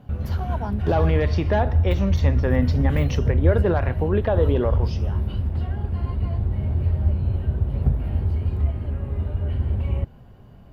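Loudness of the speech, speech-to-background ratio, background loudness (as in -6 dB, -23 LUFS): -24.5 LUFS, -0.5 dB, -24.0 LUFS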